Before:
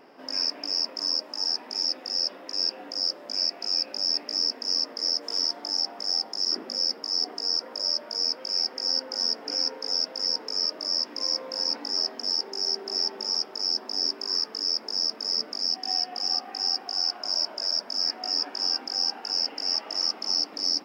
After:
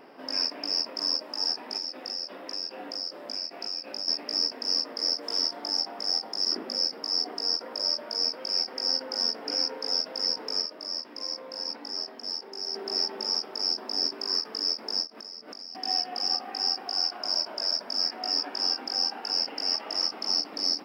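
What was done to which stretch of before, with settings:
1.77–4.08 compressor, threshold -29 dBFS
10.62–12.75 gain -6 dB
15.07–15.75 compressor 8:1, threshold -38 dBFS
whole clip: bell 6500 Hz -8 dB 0.38 oct; ending taper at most 270 dB/s; gain +2 dB

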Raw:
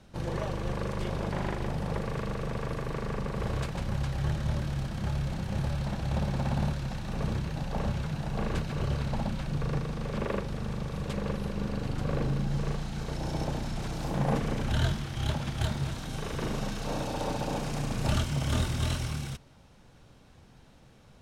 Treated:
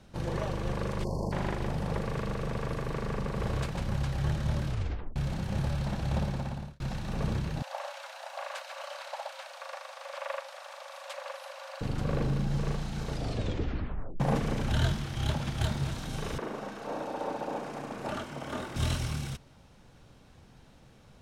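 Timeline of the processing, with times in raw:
1.04–1.32 spectral delete 1100–4200 Hz
4.66 tape stop 0.50 s
6.17–6.8 fade out
7.62–11.81 brick-wall FIR high-pass 510 Hz
13.09 tape stop 1.11 s
16.38–18.76 three-band isolator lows -22 dB, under 240 Hz, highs -12 dB, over 2000 Hz

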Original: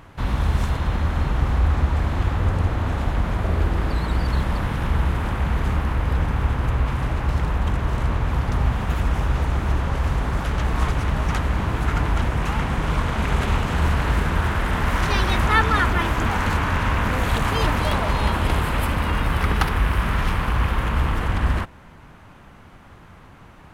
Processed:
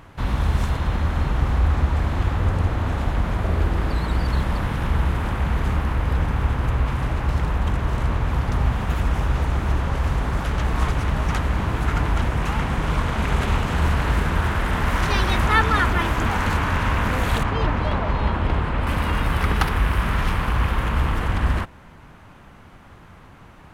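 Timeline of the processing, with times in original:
17.43–18.87 tape spacing loss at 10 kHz 21 dB

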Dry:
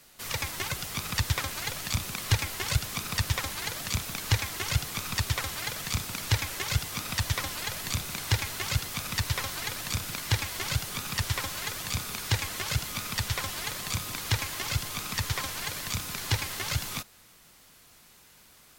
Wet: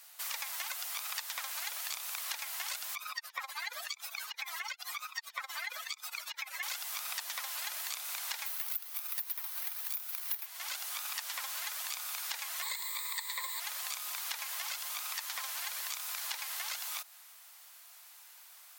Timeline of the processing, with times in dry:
2.95–6.63 spectral contrast raised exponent 2.5
8.46–10.46 careless resampling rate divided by 3×, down filtered, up zero stuff
12.62–13.6 ripple EQ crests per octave 1, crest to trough 17 dB
whole clip: steep high-pass 670 Hz 36 dB/oct; high shelf 12000 Hz +9.5 dB; compressor 5:1, threshold -34 dBFS; gain -1.5 dB

